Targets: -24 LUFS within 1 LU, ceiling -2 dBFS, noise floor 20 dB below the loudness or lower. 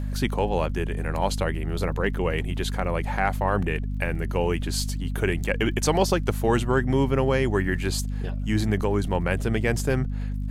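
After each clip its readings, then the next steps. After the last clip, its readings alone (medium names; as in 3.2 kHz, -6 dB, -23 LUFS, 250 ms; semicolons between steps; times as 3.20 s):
tick rate 44 per s; hum 50 Hz; highest harmonic 250 Hz; hum level -26 dBFS; loudness -25.5 LUFS; peak level -8.5 dBFS; loudness target -24.0 LUFS
-> de-click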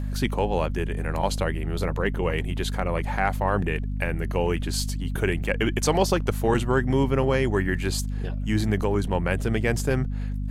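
tick rate 0.57 per s; hum 50 Hz; highest harmonic 250 Hz; hum level -26 dBFS
-> hum notches 50/100/150/200/250 Hz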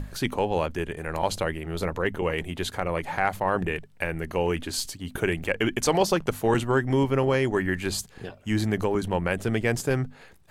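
hum not found; loudness -26.5 LUFS; peak level -9.0 dBFS; loudness target -24.0 LUFS
-> trim +2.5 dB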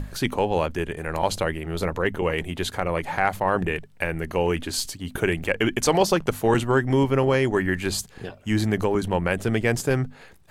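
loudness -24.0 LUFS; peak level -6.5 dBFS; noise floor -49 dBFS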